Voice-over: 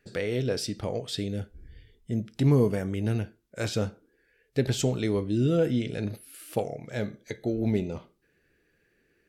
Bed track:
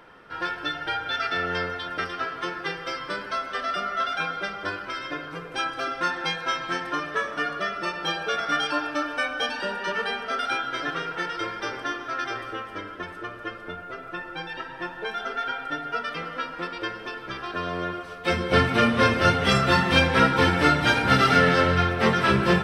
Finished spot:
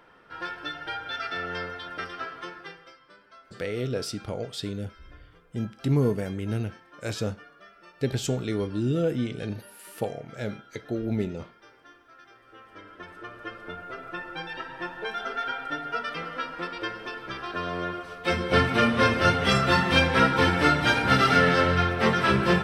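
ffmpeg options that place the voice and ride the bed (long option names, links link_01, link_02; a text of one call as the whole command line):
ffmpeg -i stem1.wav -i stem2.wav -filter_complex "[0:a]adelay=3450,volume=-1.5dB[link_01];[1:a]volume=16dB,afade=type=out:start_time=2.24:duration=0.72:silence=0.133352,afade=type=in:start_time=12.42:duration=1.45:silence=0.0841395[link_02];[link_01][link_02]amix=inputs=2:normalize=0" out.wav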